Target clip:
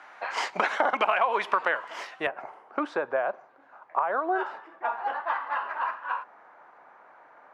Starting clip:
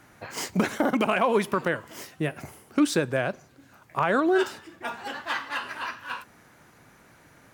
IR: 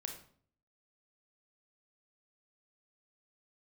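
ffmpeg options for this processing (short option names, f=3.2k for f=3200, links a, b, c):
-af "highpass=f=820:t=q:w=1.5,acompressor=threshold=-26dB:ratio=10,asetnsamples=n=441:p=0,asendcmd='2.27 lowpass f 1100',lowpass=3.2k,volume=6.5dB"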